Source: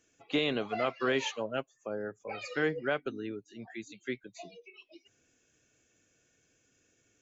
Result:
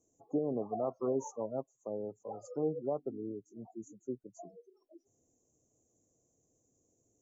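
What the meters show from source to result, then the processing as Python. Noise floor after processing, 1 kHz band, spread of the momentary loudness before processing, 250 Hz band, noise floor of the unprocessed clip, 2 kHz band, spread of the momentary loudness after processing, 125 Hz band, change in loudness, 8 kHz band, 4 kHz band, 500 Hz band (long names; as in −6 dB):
−77 dBFS, −5.5 dB, 16 LU, −2.0 dB, −72 dBFS, below −40 dB, 14 LU, −2.0 dB, −4.0 dB, can't be measured, below −35 dB, −2.0 dB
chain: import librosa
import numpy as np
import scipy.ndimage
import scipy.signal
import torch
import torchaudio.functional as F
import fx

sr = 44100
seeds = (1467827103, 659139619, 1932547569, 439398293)

y = scipy.signal.sosfilt(scipy.signal.cheby2(4, 50, [1700.0, 3800.0], 'bandstop', fs=sr, output='sos'), x)
y = fx.spec_gate(y, sr, threshold_db=-30, keep='strong')
y = y * 10.0 ** (-2.0 / 20.0)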